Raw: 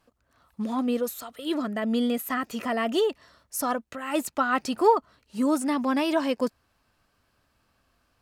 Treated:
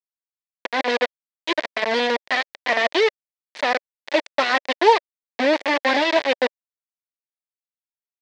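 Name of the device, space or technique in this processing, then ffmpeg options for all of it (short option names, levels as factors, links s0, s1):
hand-held game console: -af "acrusher=bits=3:mix=0:aa=0.000001,highpass=460,equalizer=f=580:t=q:w=4:g=4,equalizer=f=1300:t=q:w=4:g=-10,equalizer=f=1900:t=q:w=4:g=6,equalizer=f=2900:t=q:w=4:g=-3,lowpass=f=4300:w=0.5412,lowpass=f=4300:w=1.3066,volume=2.11"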